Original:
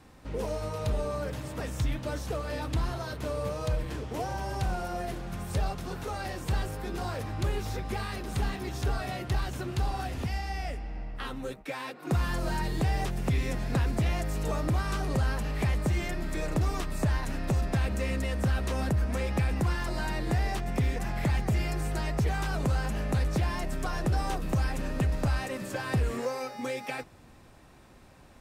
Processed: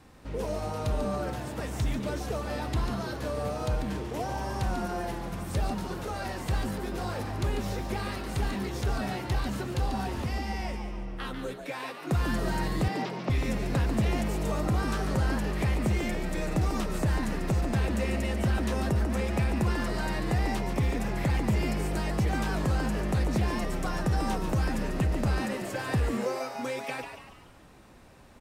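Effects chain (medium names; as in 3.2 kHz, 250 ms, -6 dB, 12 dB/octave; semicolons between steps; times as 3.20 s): 12.88–13.30 s: elliptic band-pass 160–5100 Hz; on a send: frequency-shifting echo 143 ms, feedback 44%, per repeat +150 Hz, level -8 dB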